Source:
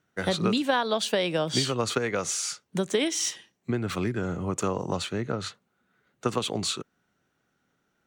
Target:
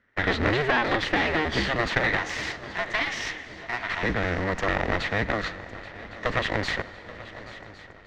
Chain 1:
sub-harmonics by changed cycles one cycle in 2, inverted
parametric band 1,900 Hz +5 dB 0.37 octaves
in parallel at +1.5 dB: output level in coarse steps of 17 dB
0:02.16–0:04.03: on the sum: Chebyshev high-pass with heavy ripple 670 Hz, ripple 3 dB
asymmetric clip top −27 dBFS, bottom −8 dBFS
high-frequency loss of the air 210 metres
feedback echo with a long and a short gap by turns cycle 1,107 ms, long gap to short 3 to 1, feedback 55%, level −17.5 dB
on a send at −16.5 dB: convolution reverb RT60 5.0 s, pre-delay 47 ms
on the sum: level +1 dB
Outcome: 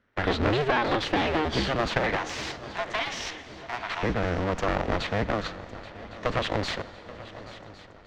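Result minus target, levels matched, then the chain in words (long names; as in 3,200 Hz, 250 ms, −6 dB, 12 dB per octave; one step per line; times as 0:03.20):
2,000 Hz band −4.0 dB
sub-harmonics by changed cycles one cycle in 2, inverted
parametric band 1,900 Hz +16 dB 0.37 octaves
in parallel at +1.5 dB: output level in coarse steps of 17 dB
0:02.16–0:04.03: on the sum: Chebyshev high-pass with heavy ripple 670 Hz, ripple 3 dB
asymmetric clip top −27 dBFS, bottom −8 dBFS
high-frequency loss of the air 210 metres
feedback echo with a long and a short gap by turns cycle 1,107 ms, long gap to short 3 to 1, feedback 55%, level −17.5 dB
on a send at −16.5 dB: convolution reverb RT60 5.0 s, pre-delay 47 ms
on the sum: level +1 dB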